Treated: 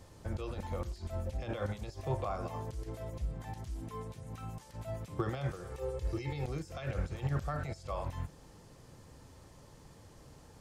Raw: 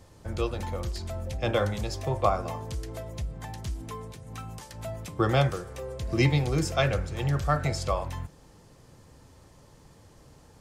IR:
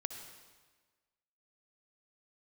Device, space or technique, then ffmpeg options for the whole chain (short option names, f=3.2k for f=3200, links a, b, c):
de-esser from a sidechain: -filter_complex "[0:a]asettb=1/sr,asplit=3[a][b][c];[a]atrim=end=5.724[d];[b]atrim=start=5.72:end=6.45,asetpts=PTS-STARTPTS,afade=t=in:d=0.004:c=qsin,afade=t=out:st=0.726:d=0.004:c=qsin,aecho=1:1:2.3:0.66,atrim=end_sample=32193[e];[c]atrim=start=6.446[f];[d][e]acrossfade=d=0.004:c1=hsin:c2=qsin[g];[g][f]acrossfade=d=0.004:c1=qsin:c2=hsin,asplit=2[h][i];[i]highpass=4.7k,apad=whole_len=467843[j];[h][j]sidechaincompress=threshold=-58dB:ratio=4:attack=0.89:release=30,volume=-1.5dB"